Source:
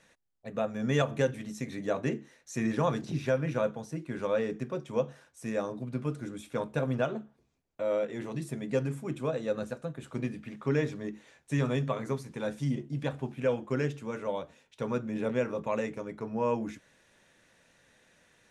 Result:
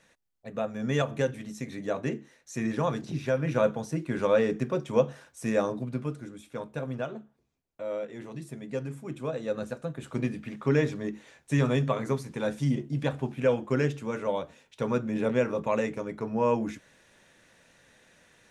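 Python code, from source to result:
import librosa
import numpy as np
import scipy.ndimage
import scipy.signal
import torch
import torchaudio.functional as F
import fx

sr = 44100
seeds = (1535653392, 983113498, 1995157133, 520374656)

y = fx.gain(x, sr, db=fx.line((3.27, 0.0), (3.69, 6.0), (5.69, 6.0), (6.32, -4.0), (8.82, -4.0), (10.11, 4.0)))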